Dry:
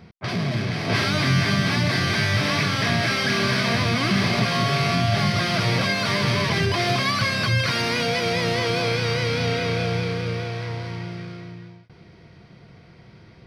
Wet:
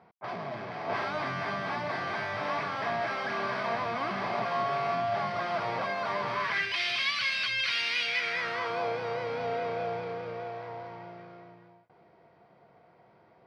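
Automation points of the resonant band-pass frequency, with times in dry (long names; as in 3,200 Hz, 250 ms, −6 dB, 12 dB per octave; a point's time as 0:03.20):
resonant band-pass, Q 2
0:06.27 850 Hz
0:06.78 2,800 Hz
0:08.02 2,800 Hz
0:08.90 760 Hz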